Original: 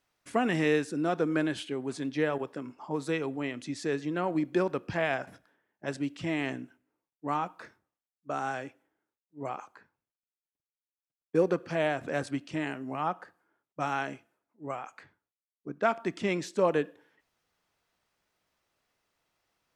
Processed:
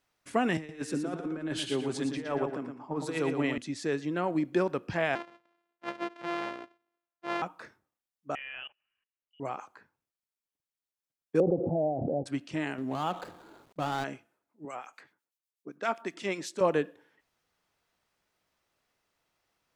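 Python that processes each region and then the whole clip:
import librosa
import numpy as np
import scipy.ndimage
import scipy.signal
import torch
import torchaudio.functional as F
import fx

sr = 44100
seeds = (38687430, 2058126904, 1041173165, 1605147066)

y = fx.chain(x, sr, fx.over_compress(threshold_db=-31.0, ratio=-0.5),
    fx.echo_feedback(ms=116, feedback_pct=34, wet_db=-5.5),
    fx.band_widen(depth_pct=70), at=(0.57, 3.58))
y = fx.chain(y, sr, fx.sample_sort(block=128),
    fx.bandpass_edges(low_hz=390.0, high_hz=2600.0), at=(5.15, 7.42))
y = fx.chain(y, sr, fx.freq_invert(carrier_hz=3200),
    fx.level_steps(step_db=21), at=(8.35, 9.4))
y = fx.chain(y, sr, fx.cheby1_lowpass(hz=810.0, order=6),
    fx.pre_swell(db_per_s=21.0), at=(11.4, 12.26))
y = fx.chain(y, sr, fx.median_filter(points=25),
    fx.env_flatten(amount_pct=50), at=(12.78, 14.04))
y = fx.chain(y, sr, fx.highpass(hz=210.0, slope=12),
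    fx.high_shelf(hz=2700.0, db=6.0),
    fx.harmonic_tremolo(hz=7.9, depth_pct=70, crossover_hz=1900.0), at=(14.65, 16.61))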